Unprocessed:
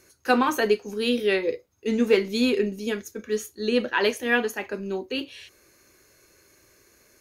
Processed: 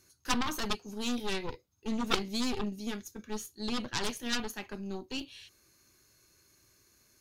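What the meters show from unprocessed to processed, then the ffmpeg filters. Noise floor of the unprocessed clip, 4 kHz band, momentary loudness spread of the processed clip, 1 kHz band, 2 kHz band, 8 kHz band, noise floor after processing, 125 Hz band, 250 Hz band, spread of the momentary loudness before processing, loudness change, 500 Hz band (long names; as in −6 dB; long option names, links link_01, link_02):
−60 dBFS, −4.0 dB, 10 LU, −9.0 dB, −12.0 dB, −1.0 dB, −69 dBFS, can't be measured, −8.5 dB, 10 LU, −10.0 dB, −17.0 dB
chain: -af "aeval=exprs='0.447*(cos(1*acos(clip(val(0)/0.447,-1,1)))-cos(1*PI/2))+0.224*(cos(3*acos(clip(val(0)/0.447,-1,1)))-cos(3*PI/2))+0.0224*(cos(8*acos(clip(val(0)/0.447,-1,1)))-cos(8*PI/2))':channel_layout=same,equalizer=frequency=125:width_type=o:width=1:gain=3,equalizer=frequency=500:width_type=o:width=1:gain=-10,equalizer=frequency=2000:width_type=o:width=1:gain=-6,equalizer=frequency=4000:width_type=o:width=1:gain=3"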